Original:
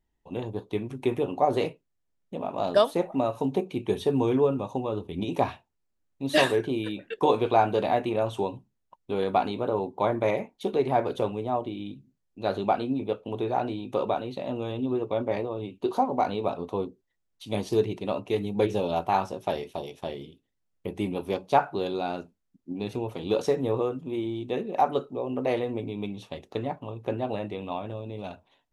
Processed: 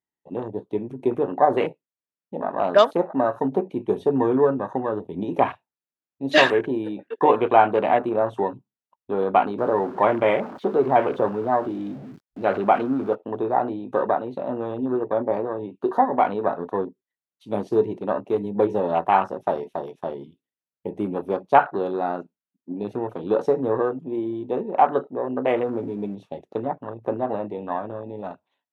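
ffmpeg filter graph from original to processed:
-filter_complex "[0:a]asettb=1/sr,asplit=3[s0][s1][s2];[s0]atrim=end=9.584[s3];[s1]atrim=start=9.58:end=13.15,asetpts=PTS-STARTPTS,afade=t=in:d=0.004:c=qsin,afade=t=out:st=3.566:d=0.004:c=qsin,aeval=exprs='val(0)+0.5*0.0188*sgn(val(0))':c=same,acrossover=split=5800[s4][s5];[s5]acompressor=threshold=0.00126:ratio=4:attack=1:release=60[s6];[s4][s6]amix=inputs=2:normalize=0[s7];[s2]atrim=start=13.146[s8];[s3][s7]acrossfade=d=0.004:c1=hsin:c2=qsin[s9];[s9][s8]acrossfade=d=0.004:c1=qsin:c2=hsin,asettb=1/sr,asplit=3[s10][s11][s12];[s10]atrim=end=25.514[s13];[s11]atrim=start=25.51:end=26.15,asetpts=PTS-STARTPTS,afade=t=in:d=0.004:c=qsin,afade=t=out:st=0.636:d=0.004:c=qsin,aeval=exprs='val(0)+0.5*0.0112*sgn(val(0))':c=same,highshelf=f=3800:g=-10[s14];[s12]atrim=start=26.146[s15];[s13][s14]acrossfade=d=0.004:c1=hsin:c2=qsin[s16];[s16][s15]acrossfade=d=0.004:c1=qsin:c2=hsin,afwtdn=0.0126,highpass=160,equalizer=f=1500:w=0.76:g=5.5,volume=1.5"

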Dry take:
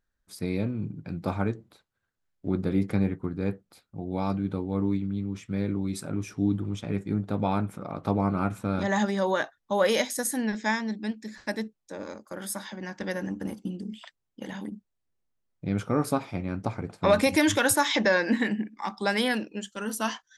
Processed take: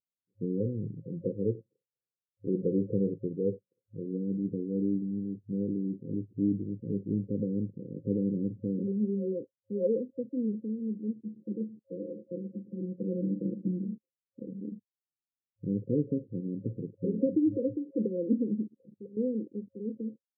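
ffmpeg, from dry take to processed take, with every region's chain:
-filter_complex "[0:a]asettb=1/sr,asplit=3[s0][s1][s2];[s0]atrim=end=0.604[s3];[s1]atrim=start=0.6:end=4.06,asetpts=PTS-STARTPTS,afade=t=in:d=0.004:c=qsin,afade=t=out:st=3.456:d=0.004:c=qsin,lowpass=f=740:t=q:w=4.9,aecho=1:1:2:0.37,atrim=end_sample=152586[s4];[s2]atrim=start=4.056[s5];[s3][s4]acrossfade=d=0.004:c1=hsin:c2=qsin[s6];[s6][s5]acrossfade=d=0.004:c1=qsin:c2=hsin,asettb=1/sr,asplit=3[s7][s8][s9];[s7]atrim=end=11.244[s10];[s8]atrim=start=11.24:end=13.96,asetpts=PTS-STARTPTS,afade=t=in:d=0.004:c=qsin,afade=t=out:st=2.716:d=0.004:c=qsin,aecho=1:1:5.9:0.94,atrim=end_sample=119952,aecho=1:1:115:0.168,atrim=end_sample=119952[s11];[s9]atrim=start=13.956[s12];[s10][s11]acrossfade=d=0.004:c1=hsin:c2=qsin[s13];[s13][s12]acrossfade=d=0.004:c1=qsin:c2=hsin,asettb=1/sr,asplit=3[s14][s15][s16];[s14]atrim=end=18.674[s17];[s15]atrim=start=18.67:end=19.17,asetpts=PTS-STARTPTS,afade=t=in:d=0.004:c=qsin,afade=t=out:st=0.496:d=0.004:c=qsin,aeval=exprs='clip(val(0),-1,0.0501)':c=same,equalizer=f=300:t=o:w=1.9:g=-5,acompressor=threshold=0.0126:ratio=3:attack=3.2:release=140:knee=1:detection=peak[s18];[s16]atrim=start=19.166[s19];[s17][s18]acrossfade=d=0.004:c1=hsin:c2=qsin[s20];[s20][s19]acrossfade=d=0.004:c1=qsin:c2=hsin,afwtdn=0.0141,afftfilt=real='re*between(b*sr/4096,100,540)':imag='im*between(b*sr/4096,100,540)':win_size=4096:overlap=0.75,volume=0.794"

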